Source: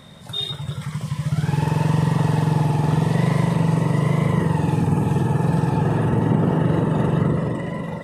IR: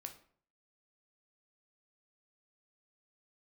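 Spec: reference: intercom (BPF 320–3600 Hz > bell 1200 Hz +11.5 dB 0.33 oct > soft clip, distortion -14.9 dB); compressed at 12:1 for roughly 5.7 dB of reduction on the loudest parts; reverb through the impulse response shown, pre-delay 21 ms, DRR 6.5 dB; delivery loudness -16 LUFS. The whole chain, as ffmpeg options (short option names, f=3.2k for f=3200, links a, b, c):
-filter_complex "[0:a]acompressor=threshold=-20dB:ratio=12,asplit=2[a][b];[1:a]atrim=start_sample=2205,adelay=21[c];[b][c]afir=irnorm=-1:irlink=0,volume=-2dB[d];[a][d]amix=inputs=2:normalize=0,highpass=320,lowpass=3.6k,equalizer=f=1.2k:t=o:w=0.33:g=11.5,asoftclip=threshold=-25.5dB,volume=16dB"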